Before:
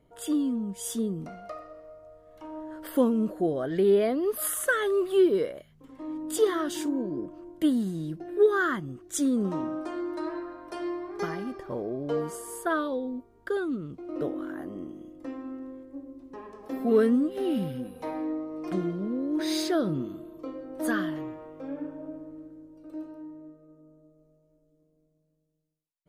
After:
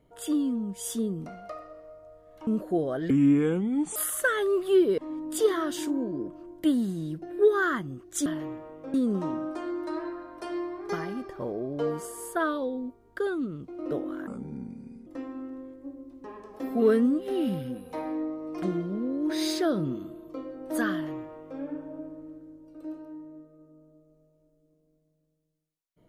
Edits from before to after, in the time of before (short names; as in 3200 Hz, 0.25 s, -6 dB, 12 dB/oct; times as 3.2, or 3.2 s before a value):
2.47–3.16 cut
3.79–4.4 speed 71%
5.42–5.96 cut
14.57–15.16 speed 74%
21.02–21.7 copy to 9.24